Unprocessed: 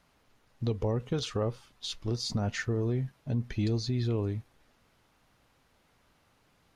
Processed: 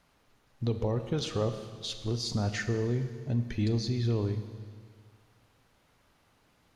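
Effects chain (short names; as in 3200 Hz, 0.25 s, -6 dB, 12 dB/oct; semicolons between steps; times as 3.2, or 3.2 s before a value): Schroeder reverb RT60 1.9 s, combs from 26 ms, DRR 8.5 dB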